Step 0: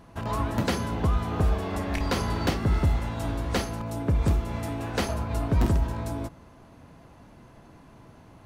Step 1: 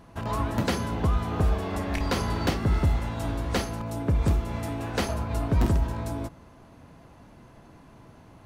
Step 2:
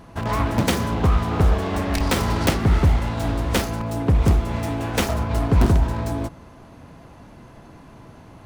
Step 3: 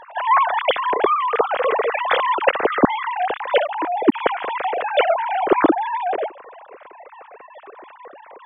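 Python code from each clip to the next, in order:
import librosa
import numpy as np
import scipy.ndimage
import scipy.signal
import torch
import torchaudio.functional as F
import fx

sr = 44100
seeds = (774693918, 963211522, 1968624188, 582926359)

y1 = x
y2 = fx.self_delay(y1, sr, depth_ms=0.38)
y2 = y2 * librosa.db_to_amplitude(6.5)
y3 = fx.sine_speech(y2, sr)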